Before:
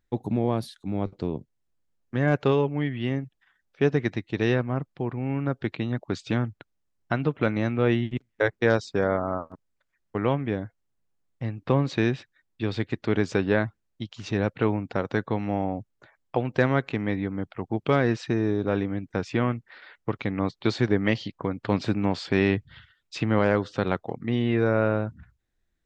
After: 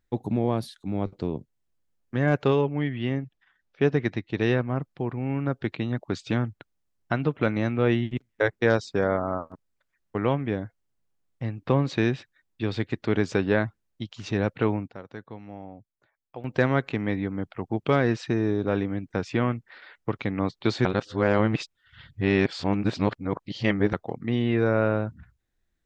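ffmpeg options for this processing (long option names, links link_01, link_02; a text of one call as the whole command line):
ffmpeg -i in.wav -filter_complex "[0:a]asettb=1/sr,asplit=3[link_01][link_02][link_03];[link_01]atrim=end=2.614[link_04];[link_02]atrim=start=2.61:end=4.7,asetpts=PTS-STARTPTS,afade=type=in:duration=0.004:curve=qsin,afade=type=out:start_time=2.086:duration=0.004:curve=qsin,lowpass=5700[link_05];[link_03]atrim=start=4.696[link_06];[link_04][link_05]acrossfade=duration=0.004:curve1=hsin:curve2=qsin[link_07];[link_07][link_06]acrossfade=duration=0.004:curve1=qsin:curve2=hsin,asplit=5[link_08][link_09][link_10][link_11][link_12];[link_08]atrim=end=14.88,asetpts=PTS-STARTPTS,afade=type=out:start_time=14.54:duration=0.34:curve=log:silence=0.199526[link_13];[link_09]atrim=start=14.88:end=16.44,asetpts=PTS-STARTPTS,volume=-14dB[link_14];[link_10]atrim=start=16.44:end=20.852,asetpts=PTS-STARTPTS,afade=type=in:duration=0.34:curve=log:silence=0.199526[link_15];[link_11]atrim=start=20.848:end=23.932,asetpts=PTS-STARTPTS,areverse[link_16];[link_12]atrim=start=23.928[link_17];[link_13][link_14][link_15]concat=n=3:v=0:a=1[link_18];[link_18][link_16]acrossfade=duration=0.004:curve1=hsin:curve2=hsin[link_19];[link_19][link_17]acrossfade=duration=0.004:curve1=hsin:curve2=hsin" out.wav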